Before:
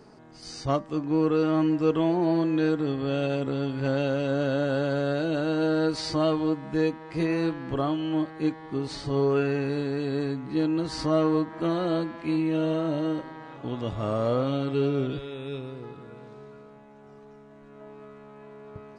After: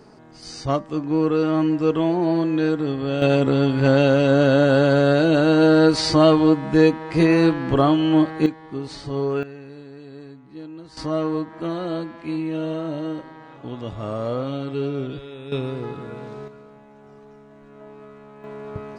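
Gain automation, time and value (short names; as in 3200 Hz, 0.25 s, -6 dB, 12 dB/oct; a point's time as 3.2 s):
+3.5 dB
from 3.22 s +10 dB
from 8.46 s 0 dB
from 9.43 s -12 dB
from 10.97 s -0.5 dB
from 15.52 s +10 dB
from 16.48 s +3 dB
from 18.44 s +10 dB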